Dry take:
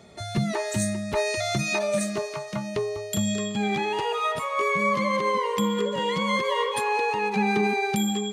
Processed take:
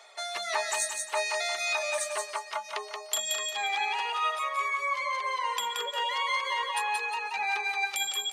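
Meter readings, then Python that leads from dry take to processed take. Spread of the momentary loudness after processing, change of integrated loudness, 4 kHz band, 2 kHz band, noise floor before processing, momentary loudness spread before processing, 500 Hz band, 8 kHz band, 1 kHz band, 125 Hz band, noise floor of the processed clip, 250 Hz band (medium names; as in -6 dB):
6 LU, -4.0 dB, +1.0 dB, -1.0 dB, -35 dBFS, 6 LU, -11.0 dB, +1.0 dB, -3.0 dB, under -40 dB, -44 dBFS, under -35 dB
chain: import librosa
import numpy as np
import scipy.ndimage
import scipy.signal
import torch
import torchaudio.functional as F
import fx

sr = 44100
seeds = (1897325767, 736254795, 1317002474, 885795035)

y = scipy.signal.sosfilt(scipy.signal.butter(4, 730.0, 'highpass', fs=sr, output='sos'), x)
y = fx.dereverb_blind(y, sr, rt60_s=1.8)
y = fx.high_shelf(y, sr, hz=9400.0, db=-4.5)
y = fx.rider(y, sr, range_db=4, speed_s=0.5)
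y = fx.echo_feedback(y, sr, ms=177, feedback_pct=33, wet_db=-4.0)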